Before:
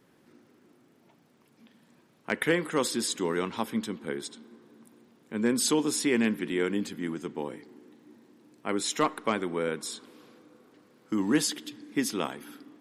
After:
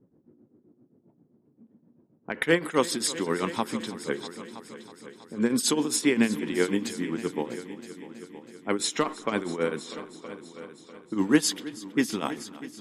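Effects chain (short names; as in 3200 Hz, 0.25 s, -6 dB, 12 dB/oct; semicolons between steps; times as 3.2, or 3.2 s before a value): tremolo triangle 7.6 Hz, depth 85%; low-pass opened by the level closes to 350 Hz, open at -30.5 dBFS; multi-head echo 0.323 s, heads all three, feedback 45%, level -18.5 dB; gain +6 dB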